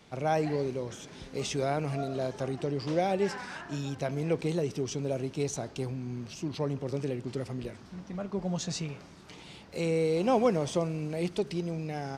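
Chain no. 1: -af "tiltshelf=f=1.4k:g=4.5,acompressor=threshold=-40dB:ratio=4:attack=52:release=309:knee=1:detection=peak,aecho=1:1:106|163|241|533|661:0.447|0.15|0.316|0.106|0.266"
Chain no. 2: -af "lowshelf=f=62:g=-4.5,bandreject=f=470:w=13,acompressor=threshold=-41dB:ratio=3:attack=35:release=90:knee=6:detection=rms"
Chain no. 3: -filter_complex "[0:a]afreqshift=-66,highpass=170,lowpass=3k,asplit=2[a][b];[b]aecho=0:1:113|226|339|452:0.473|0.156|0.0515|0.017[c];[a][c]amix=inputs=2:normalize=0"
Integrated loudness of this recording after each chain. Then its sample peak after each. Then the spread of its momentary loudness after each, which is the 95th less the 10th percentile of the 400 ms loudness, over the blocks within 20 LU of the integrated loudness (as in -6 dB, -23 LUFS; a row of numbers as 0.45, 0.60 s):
-38.5, -41.0, -32.5 LUFS; -22.0, -25.0, -14.0 dBFS; 4, 6, 15 LU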